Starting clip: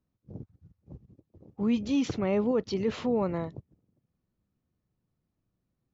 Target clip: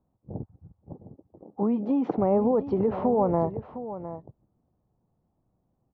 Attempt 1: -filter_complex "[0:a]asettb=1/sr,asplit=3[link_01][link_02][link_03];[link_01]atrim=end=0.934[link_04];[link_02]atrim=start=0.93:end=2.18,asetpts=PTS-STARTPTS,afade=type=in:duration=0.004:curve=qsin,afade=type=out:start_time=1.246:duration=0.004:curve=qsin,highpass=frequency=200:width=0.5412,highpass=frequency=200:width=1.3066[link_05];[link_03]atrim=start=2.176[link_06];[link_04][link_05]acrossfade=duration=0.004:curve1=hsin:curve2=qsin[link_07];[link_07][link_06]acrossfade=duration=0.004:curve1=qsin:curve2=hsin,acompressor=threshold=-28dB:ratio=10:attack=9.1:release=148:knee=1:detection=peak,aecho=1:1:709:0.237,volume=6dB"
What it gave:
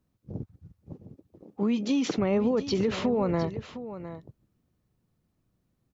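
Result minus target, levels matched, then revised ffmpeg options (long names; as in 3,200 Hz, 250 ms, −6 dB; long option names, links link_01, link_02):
1,000 Hz band −5.0 dB
-filter_complex "[0:a]asettb=1/sr,asplit=3[link_01][link_02][link_03];[link_01]atrim=end=0.934[link_04];[link_02]atrim=start=0.93:end=2.18,asetpts=PTS-STARTPTS,afade=type=in:duration=0.004:curve=qsin,afade=type=out:start_time=1.246:duration=0.004:curve=qsin,highpass=frequency=200:width=0.5412,highpass=frequency=200:width=1.3066[link_05];[link_03]atrim=start=2.176[link_06];[link_04][link_05]acrossfade=duration=0.004:curve1=hsin:curve2=qsin[link_07];[link_07][link_06]acrossfade=duration=0.004:curve1=qsin:curve2=hsin,acompressor=threshold=-28dB:ratio=10:attack=9.1:release=148:knee=1:detection=peak,lowpass=frequency=820:width_type=q:width=2.8,aecho=1:1:709:0.237,volume=6dB"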